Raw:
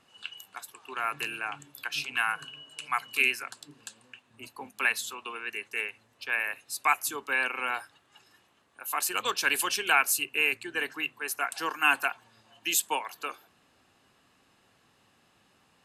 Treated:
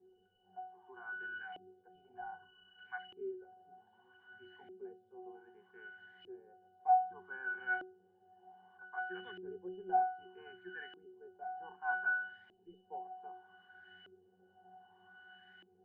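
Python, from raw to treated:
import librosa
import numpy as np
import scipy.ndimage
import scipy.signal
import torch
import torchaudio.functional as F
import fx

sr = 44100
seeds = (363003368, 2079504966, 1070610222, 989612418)

y = x + 0.5 * 10.0 ** (-24.5 / 20.0) * np.diff(np.sign(x), prepend=np.sign(x[:1]))
y = scipy.signal.sosfilt(scipy.signal.butter(2, 89.0, 'highpass', fs=sr, output='sos'), y)
y = fx.octave_resonator(y, sr, note='F#', decay_s=0.52)
y = fx.cheby_harmonics(y, sr, harmonics=(6, 8), levels_db=(-31, -43), full_scale_db=-32.0)
y = fx.filter_lfo_lowpass(y, sr, shape='saw_up', hz=0.64, low_hz=360.0, high_hz=2100.0, q=4.3)
y = F.gain(torch.from_numpy(y), 5.0).numpy()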